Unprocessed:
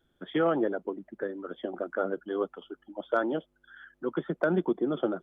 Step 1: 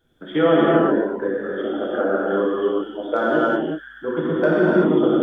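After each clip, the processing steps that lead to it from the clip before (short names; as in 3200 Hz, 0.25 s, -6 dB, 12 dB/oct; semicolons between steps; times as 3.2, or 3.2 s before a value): non-linear reverb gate 0.41 s flat, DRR -7.5 dB; gain +3.5 dB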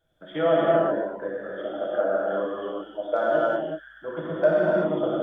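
thirty-one-band EQ 250 Hz -11 dB, 400 Hz -8 dB, 630 Hz +12 dB; gain -7 dB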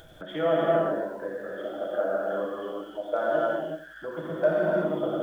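upward compressor, threshold -29 dBFS; lo-fi delay 86 ms, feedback 35%, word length 8-bit, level -13 dB; gain -3 dB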